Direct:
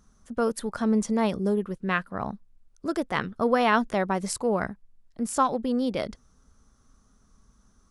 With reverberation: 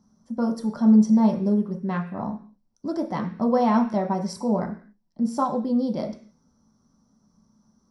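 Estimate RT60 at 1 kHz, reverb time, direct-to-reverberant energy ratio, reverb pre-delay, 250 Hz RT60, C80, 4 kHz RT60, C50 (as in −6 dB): 0.45 s, 0.45 s, 1.5 dB, 3 ms, 0.55 s, 15.5 dB, can't be measured, 11.0 dB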